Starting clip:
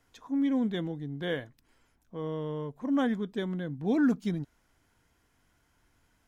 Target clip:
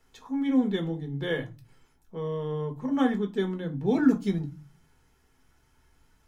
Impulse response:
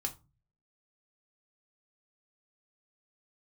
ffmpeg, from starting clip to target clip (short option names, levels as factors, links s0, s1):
-filter_complex "[1:a]atrim=start_sample=2205[s0];[0:a][s0]afir=irnorm=-1:irlink=0,volume=1.26"